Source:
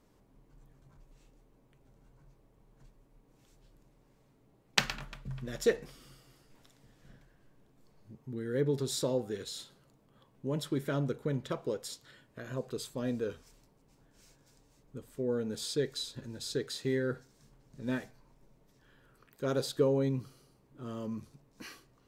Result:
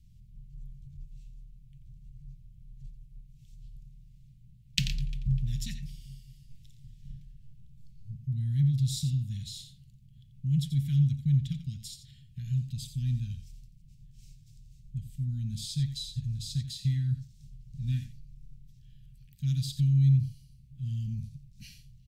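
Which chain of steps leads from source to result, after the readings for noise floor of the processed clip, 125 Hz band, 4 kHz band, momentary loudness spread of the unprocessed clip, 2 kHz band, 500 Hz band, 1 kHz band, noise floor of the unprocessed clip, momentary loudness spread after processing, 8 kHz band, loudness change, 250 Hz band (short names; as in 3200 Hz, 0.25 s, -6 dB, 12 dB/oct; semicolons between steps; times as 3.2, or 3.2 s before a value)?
-56 dBFS, +13.0 dB, 0.0 dB, 18 LU, n/a, under -40 dB, under -35 dB, -67 dBFS, 23 LU, -1.0 dB, +4.0 dB, +0.5 dB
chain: inverse Chebyshev band-stop 430–1000 Hz, stop band 70 dB; tone controls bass +14 dB, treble -3 dB; on a send: echo 87 ms -11 dB; on the sum: gain +1.5 dB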